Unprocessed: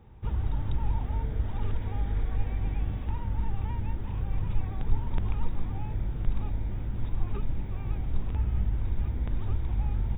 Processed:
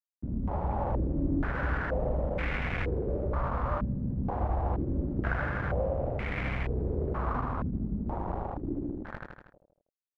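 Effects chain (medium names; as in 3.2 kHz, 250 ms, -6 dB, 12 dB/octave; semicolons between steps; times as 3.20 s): tape stop on the ending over 2.82 s; high-pass 110 Hz 12 dB/octave; de-hum 232.3 Hz, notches 2; level rider gain up to 3.5 dB; bit crusher 6-bit; pitch shift -8 st; on a send: feedback delay 79 ms, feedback 57%, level -3.5 dB; on the sum: step-sequenced low-pass 2.1 Hz 230–2200 Hz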